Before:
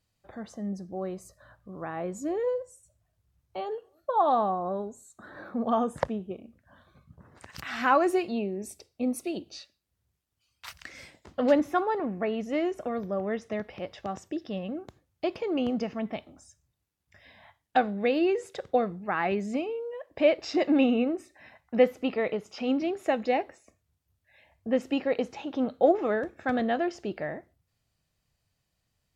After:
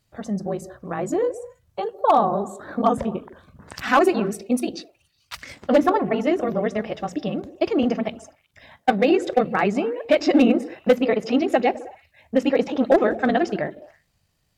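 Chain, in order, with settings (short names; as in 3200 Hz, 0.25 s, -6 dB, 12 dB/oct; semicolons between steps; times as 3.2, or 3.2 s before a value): delay with a stepping band-pass 0.105 s, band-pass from 160 Hz, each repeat 0.7 oct, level -9.5 dB; overloaded stage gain 16.5 dB; granular stretch 0.5×, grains 39 ms; gain +9 dB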